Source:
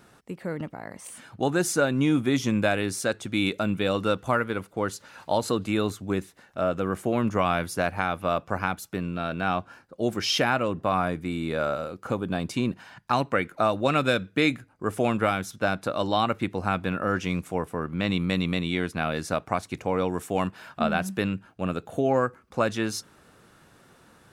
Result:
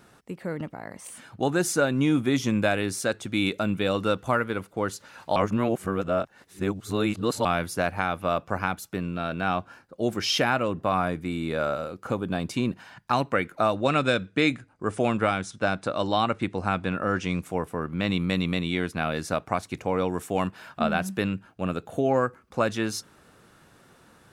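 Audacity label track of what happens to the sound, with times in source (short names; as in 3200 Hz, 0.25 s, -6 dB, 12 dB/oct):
5.360000	7.450000	reverse
13.730000	17.420000	steep low-pass 10000 Hz 96 dB/oct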